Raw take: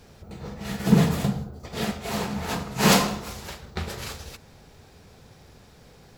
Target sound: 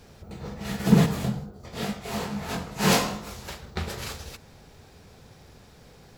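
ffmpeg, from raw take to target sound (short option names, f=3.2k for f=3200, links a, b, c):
-filter_complex "[0:a]asettb=1/sr,asplit=3[a][b][c];[a]atrim=end=1.064[d];[b]atrim=start=1.06:end=3.48,asetpts=PTS-STARTPTS,afade=t=in:d=0.004:c=qsin,afade=t=out:st=2.416:d=0.004:c=qsin,flanger=delay=19.5:depth=4.1:speed=2.3[e];[c]atrim=start=3.476[f];[d][e]acrossfade=d=0.004:c1=hsin:c2=qsin[g];[g][f]acrossfade=d=0.004:c1=qsin:c2=hsin"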